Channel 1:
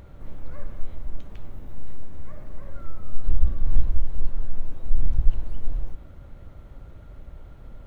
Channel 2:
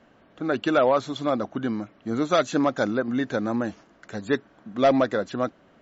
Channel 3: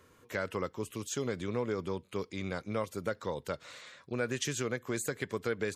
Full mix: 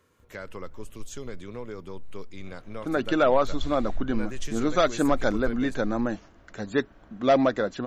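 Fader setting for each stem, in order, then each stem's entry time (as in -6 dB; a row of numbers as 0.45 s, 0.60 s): -14.5 dB, -1.0 dB, -4.5 dB; 0.20 s, 2.45 s, 0.00 s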